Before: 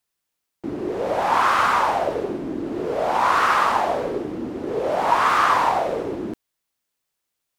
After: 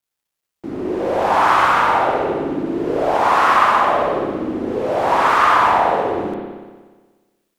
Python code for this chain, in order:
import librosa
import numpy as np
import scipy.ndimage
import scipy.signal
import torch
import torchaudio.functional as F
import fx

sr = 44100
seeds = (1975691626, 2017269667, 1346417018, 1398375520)

y = fx.rev_spring(x, sr, rt60_s=1.4, pass_ms=(60,), chirp_ms=55, drr_db=-2.5)
y = fx.quant_dither(y, sr, seeds[0], bits=12, dither='none')